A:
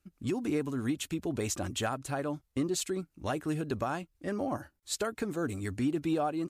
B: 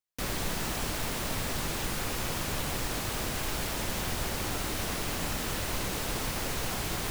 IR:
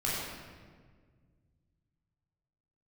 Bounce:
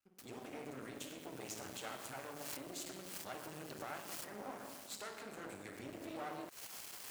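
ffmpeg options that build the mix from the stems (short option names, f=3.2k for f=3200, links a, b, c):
-filter_complex "[0:a]alimiter=level_in=2dB:limit=-24dB:level=0:latency=1,volume=-2dB,volume=-8.5dB,asplit=3[a][b][c];[b]volume=-6dB[d];[1:a]highshelf=f=3.5k:g=8.5,bandreject=f=3.7k:w=12,volume=-3.5dB,afade=t=in:st=1.1:d=0.45:silence=0.354813,afade=t=out:st=4.05:d=0.78:silence=0.251189,afade=t=in:st=5.67:d=0.36:silence=0.473151[e];[c]apad=whole_len=313438[f];[e][f]sidechaincompress=threshold=-58dB:ratio=6:attack=7.5:release=136[g];[2:a]atrim=start_sample=2205[h];[d][h]afir=irnorm=-1:irlink=0[i];[a][g][i]amix=inputs=3:normalize=0,aeval=exprs='max(val(0),0)':c=same,highpass=f=540:p=1"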